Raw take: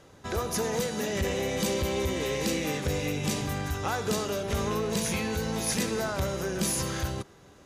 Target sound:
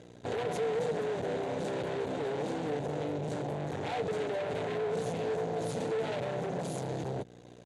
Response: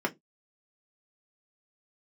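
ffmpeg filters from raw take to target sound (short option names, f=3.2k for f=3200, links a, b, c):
-af "afwtdn=0.0316,aecho=1:1:6.9:0.71,alimiter=level_in=0.5dB:limit=-24dB:level=0:latency=1:release=24,volume=-0.5dB,acompressor=threshold=-37dB:ratio=10,aeval=exprs='0.0282*sin(PI/2*2.51*val(0)/0.0282)':c=same,aeval=exprs='val(0)+0.00398*(sin(2*PI*60*n/s)+sin(2*PI*2*60*n/s)/2+sin(2*PI*3*60*n/s)/3+sin(2*PI*4*60*n/s)/4+sin(2*PI*5*60*n/s)/5)':c=same,aeval=exprs='max(val(0),0)':c=same,highpass=f=100:w=0.5412,highpass=f=100:w=1.3066,equalizer=f=470:t=q:w=4:g=8,equalizer=f=700:t=q:w=4:g=5,equalizer=f=1.2k:t=q:w=4:g=-9,equalizer=f=3.7k:t=q:w=4:g=4,equalizer=f=5.3k:t=q:w=4:g=-6,lowpass=f=9.4k:w=0.5412,lowpass=f=9.4k:w=1.3066,volume=3dB"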